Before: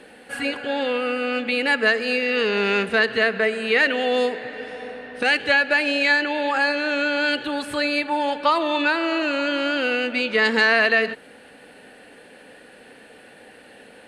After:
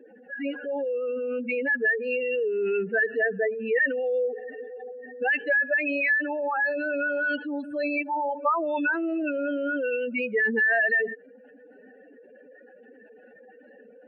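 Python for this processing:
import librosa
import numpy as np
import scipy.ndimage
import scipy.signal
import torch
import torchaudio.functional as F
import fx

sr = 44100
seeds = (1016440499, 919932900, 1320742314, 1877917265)

y = fx.spec_expand(x, sr, power=3.4)
y = y * librosa.db_to_amplitude(-4.0)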